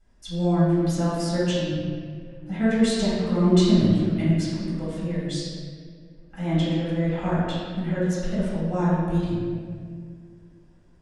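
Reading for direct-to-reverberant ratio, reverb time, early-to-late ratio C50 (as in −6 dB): −12.0 dB, 2.0 s, −2.5 dB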